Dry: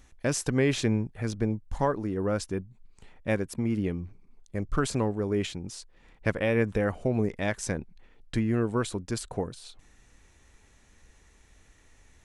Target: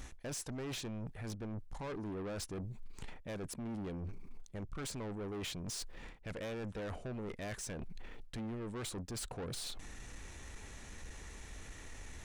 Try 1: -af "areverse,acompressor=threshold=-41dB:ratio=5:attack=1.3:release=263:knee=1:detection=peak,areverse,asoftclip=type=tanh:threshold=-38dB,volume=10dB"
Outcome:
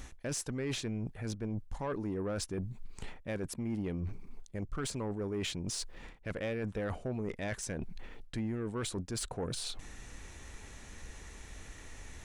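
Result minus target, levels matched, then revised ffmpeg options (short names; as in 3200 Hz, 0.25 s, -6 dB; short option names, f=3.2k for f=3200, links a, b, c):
soft clip: distortion -10 dB
-af "areverse,acompressor=threshold=-41dB:ratio=5:attack=1.3:release=263:knee=1:detection=peak,areverse,asoftclip=type=tanh:threshold=-48.5dB,volume=10dB"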